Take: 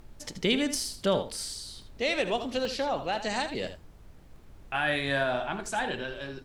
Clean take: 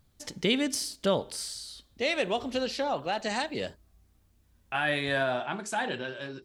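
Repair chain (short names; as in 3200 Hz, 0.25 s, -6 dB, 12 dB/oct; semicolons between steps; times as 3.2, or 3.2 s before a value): interpolate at 1.82/2.65/4.36/5.66, 1.5 ms; noise print and reduce 15 dB; inverse comb 79 ms -11 dB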